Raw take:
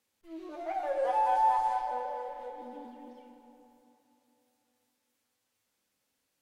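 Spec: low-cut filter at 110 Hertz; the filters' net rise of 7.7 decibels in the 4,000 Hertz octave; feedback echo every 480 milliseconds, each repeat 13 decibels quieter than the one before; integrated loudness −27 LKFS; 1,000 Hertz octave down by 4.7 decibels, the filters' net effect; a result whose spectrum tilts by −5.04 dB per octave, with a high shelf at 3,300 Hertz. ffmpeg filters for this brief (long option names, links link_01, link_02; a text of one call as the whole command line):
ffmpeg -i in.wav -af "highpass=110,equalizer=frequency=1000:width_type=o:gain=-6.5,highshelf=frequency=3300:gain=4,equalizer=frequency=4000:width_type=o:gain=7.5,aecho=1:1:480|960|1440:0.224|0.0493|0.0108,volume=8.5dB" out.wav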